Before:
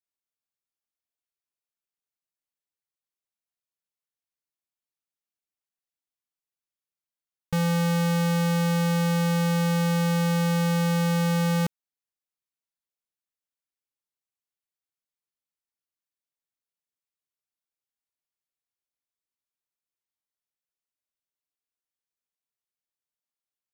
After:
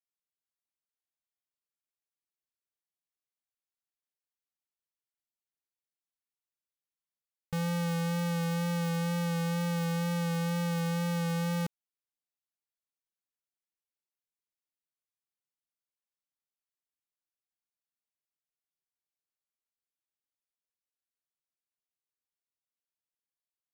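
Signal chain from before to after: vibrato 2.1 Hz 22 cents; gain -7.5 dB

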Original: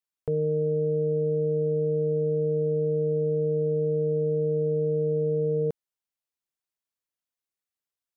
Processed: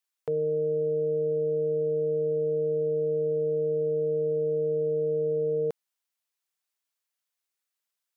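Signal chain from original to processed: HPF 860 Hz 6 dB/oct; gain +6 dB

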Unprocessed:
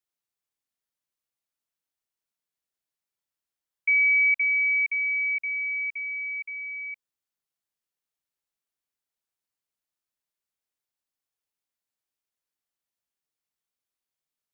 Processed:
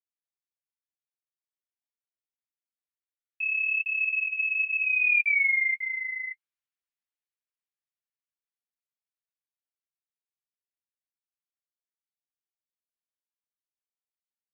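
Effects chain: Doppler pass-by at 5.33, 42 m/s, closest 14 m; bell 2100 Hz +13 dB 2.1 oct; flange 1.5 Hz, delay 7.5 ms, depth 4.4 ms, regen -23%; spectral freeze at 4.05, 0.79 s

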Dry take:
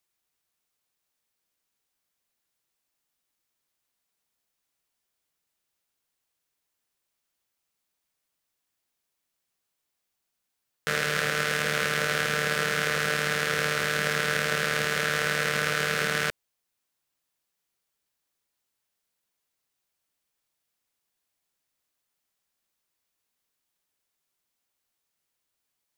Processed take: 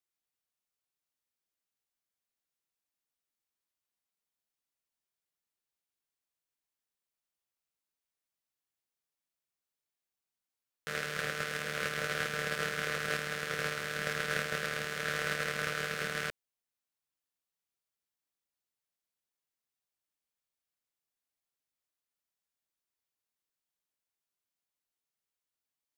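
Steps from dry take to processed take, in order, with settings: gate -24 dBFS, range -11 dB

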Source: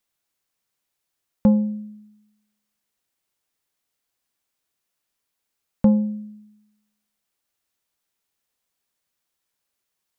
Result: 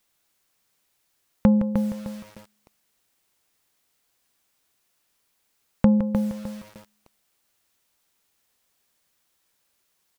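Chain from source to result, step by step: compressor 2:1, threshold -30 dBFS, peak gain reduction 10 dB; on a send: echo 0.163 s -10.5 dB; on the sum: lo-fi delay 0.305 s, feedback 35%, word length 8-bit, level -6.5 dB; gain +8 dB

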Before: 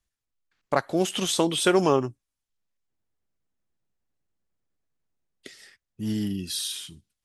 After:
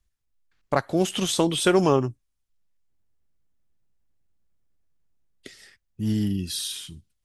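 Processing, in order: low shelf 120 Hz +12 dB

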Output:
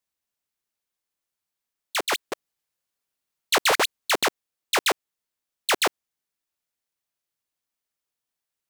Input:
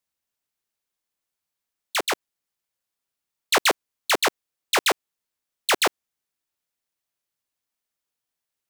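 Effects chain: 2.01–4.23 reverse delay 0.109 s, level -1.5 dB; gain -1.5 dB

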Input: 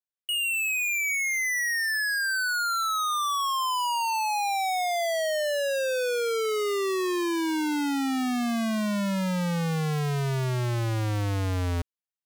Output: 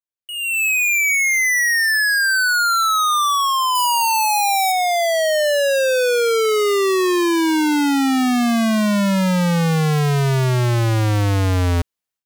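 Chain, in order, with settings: 3.75–4.72 high shelf 8600 Hz +12 dB; AGC gain up to 16 dB; gain -6 dB

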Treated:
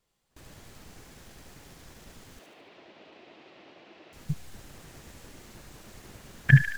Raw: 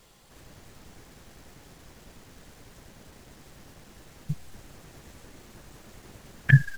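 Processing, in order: gate with hold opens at -43 dBFS; 2.39–4.13 speaker cabinet 320–3900 Hz, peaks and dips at 340 Hz +8 dB, 660 Hz +6 dB, 1600 Hz -4 dB, 2600 Hz +5 dB; thin delay 73 ms, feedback 49%, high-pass 1500 Hz, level -4 dB

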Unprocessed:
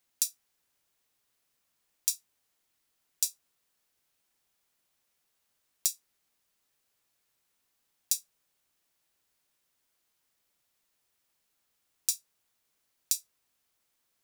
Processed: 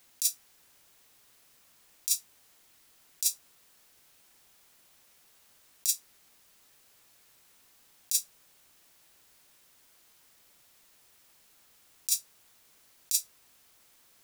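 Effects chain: negative-ratio compressor -35 dBFS, ratio -1; gain +8.5 dB

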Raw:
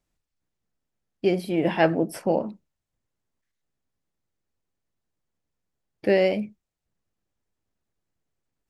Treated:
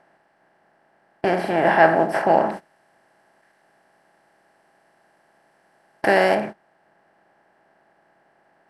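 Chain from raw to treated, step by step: per-bin compression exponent 0.4; LPF 9400 Hz 12 dB/oct; band shelf 1100 Hz +11.5 dB; gate -25 dBFS, range -19 dB; 2.51–6.35 high shelf 4400 Hz +11.5 dB; gain -4.5 dB

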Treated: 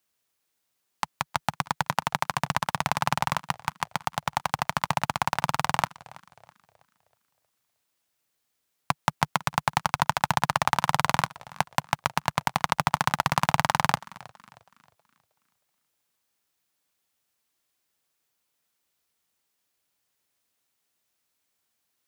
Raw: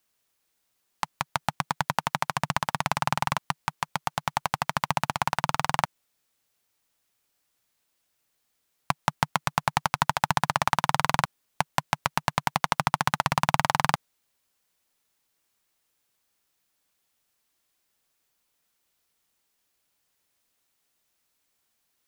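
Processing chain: HPF 54 Hz 24 dB/oct; in parallel at -8 dB: bit-crush 6-bit; on the sum: warbling echo 0.32 s, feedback 39%, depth 203 cents, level -21.5 dB; gain -2.5 dB

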